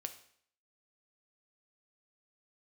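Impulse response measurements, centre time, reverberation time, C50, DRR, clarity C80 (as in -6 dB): 8 ms, 0.60 s, 12.0 dB, 7.0 dB, 15.5 dB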